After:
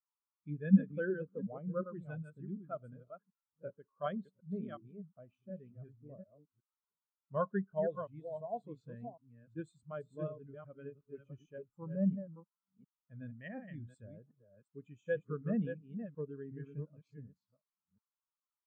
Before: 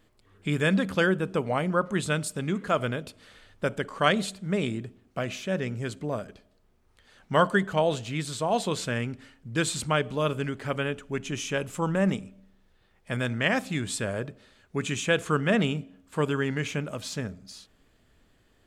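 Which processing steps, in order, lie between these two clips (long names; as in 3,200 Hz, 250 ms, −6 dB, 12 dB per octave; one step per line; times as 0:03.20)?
delay that plays each chunk backwards 367 ms, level −3.5 dB
noise in a band 810–1,500 Hz −49 dBFS
every bin expanded away from the loudest bin 2.5 to 1
level −8 dB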